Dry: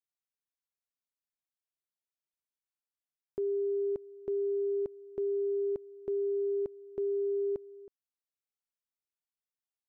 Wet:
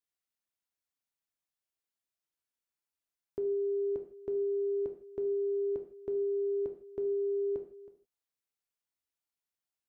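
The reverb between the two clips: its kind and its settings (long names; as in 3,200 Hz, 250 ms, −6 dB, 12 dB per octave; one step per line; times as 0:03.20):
reverb whose tail is shaped and stops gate 190 ms falling, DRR 4.5 dB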